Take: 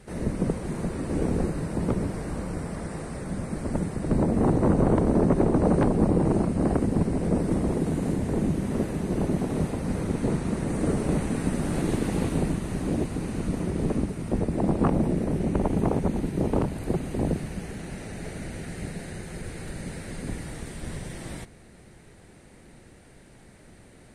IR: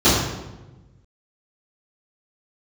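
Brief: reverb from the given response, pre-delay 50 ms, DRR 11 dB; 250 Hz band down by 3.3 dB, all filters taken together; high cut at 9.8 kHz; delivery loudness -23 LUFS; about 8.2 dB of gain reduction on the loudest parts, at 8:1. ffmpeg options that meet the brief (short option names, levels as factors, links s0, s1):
-filter_complex "[0:a]lowpass=9800,equalizer=f=250:t=o:g=-4.5,acompressor=threshold=0.0447:ratio=8,asplit=2[s0][s1];[1:a]atrim=start_sample=2205,adelay=50[s2];[s1][s2]afir=irnorm=-1:irlink=0,volume=0.0188[s3];[s0][s3]amix=inputs=2:normalize=0,volume=2.82"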